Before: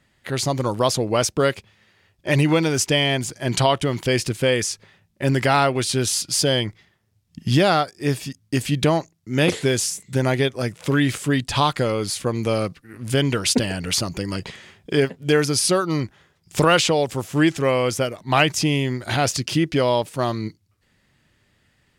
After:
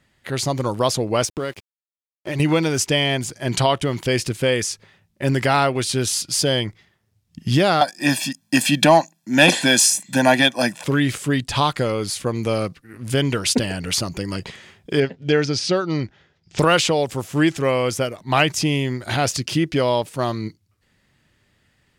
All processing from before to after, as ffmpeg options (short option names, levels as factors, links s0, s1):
-filter_complex "[0:a]asettb=1/sr,asplit=3[s0][s1][s2];[s0]atrim=end=1.254[s3];[s1]atrim=start=1.25:end=2.4,asetpts=PTS-STARTPTS,afade=t=in:d=0.004:c=qsin,afade=t=out:st=1.146:d=0.004:c=qsin,equalizer=f=330:t=o:w=0.29:g=5.5,acompressor=threshold=0.0794:ratio=4:attack=3.2:release=140:knee=1:detection=peak,aeval=exprs='sgn(val(0))*max(abs(val(0))-0.00631,0)':c=same[s4];[s2]atrim=start=2.396[s5];[s3][s4]acrossfade=d=0.004:c1=hsin:c2=qsin[s6];[s6][s5]acrossfade=d=0.004:c1=qsin:c2=hsin,asettb=1/sr,asplit=3[s7][s8][s9];[s7]atrim=end=7.814[s10];[s8]atrim=start=7.81:end=10.84,asetpts=PTS-STARTPTS,afade=t=in:d=0.004:c=qsin,afade=t=out:st=3.026:d=0.004:c=qsin,highpass=f=210:w=0.5412,highpass=f=210:w=1.3066,aecho=1:1:1.2:0.99,atrim=end_sample=133623,acontrast=63[s11];[s9]atrim=start=10.836[s12];[s10][s11]acrossfade=d=0.004:c1=hsin:c2=qsin[s13];[s13][s12]acrossfade=d=0.004:c1=qsin:c2=hsin,asettb=1/sr,asplit=3[s14][s15][s16];[s14]atrim=end=15.004[s17];[s15]atrim=start=15:end=16.59,asetpts=PTS-STARTPTS,afade=t=in:d=0.004:c=qsin,afade=t=out:st=1.586:d=0.004:c=qsin,lowpass=f=5800:w=0.5412,lowpass=f=5800:w=1.3066,equalizer=f=1100:w=4.1:g=-7[s18];[s16]atrim=start=16.586[s19];[s17][s18]acrossfade=d=0.004:c1=hsin:c2=qsin[s20];[s20][s19]acrossfade=d=0.004:c1=qsin:c2=hsin"